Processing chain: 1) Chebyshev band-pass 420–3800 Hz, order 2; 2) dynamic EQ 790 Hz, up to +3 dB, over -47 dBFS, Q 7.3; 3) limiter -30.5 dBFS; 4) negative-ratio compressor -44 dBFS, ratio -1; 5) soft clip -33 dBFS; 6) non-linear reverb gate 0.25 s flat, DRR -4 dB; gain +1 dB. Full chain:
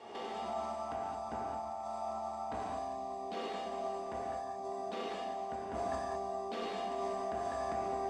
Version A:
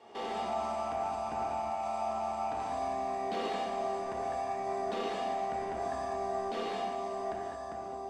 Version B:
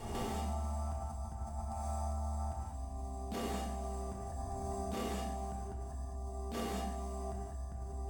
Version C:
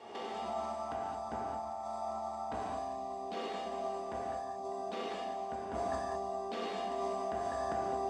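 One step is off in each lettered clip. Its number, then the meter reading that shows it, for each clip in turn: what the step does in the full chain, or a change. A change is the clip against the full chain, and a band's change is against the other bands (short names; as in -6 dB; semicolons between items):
4, loudness change +4.0 LU; 1, 125 Hz band +18.5 dB; 5, distortion -23 dB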